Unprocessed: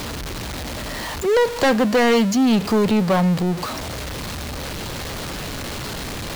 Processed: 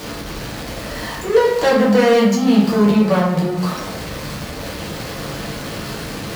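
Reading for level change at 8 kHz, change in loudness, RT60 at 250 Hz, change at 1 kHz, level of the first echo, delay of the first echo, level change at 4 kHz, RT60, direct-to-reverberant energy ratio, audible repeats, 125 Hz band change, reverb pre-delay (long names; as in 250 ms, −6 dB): −1.0 dB, +3.0 dB, 1.0 s, +2.0 dB, no echo audible, no echo audible, 0.0 dB, 0.90 s, −5.5 dB, no echo audible, +2.0 dB, 6 ms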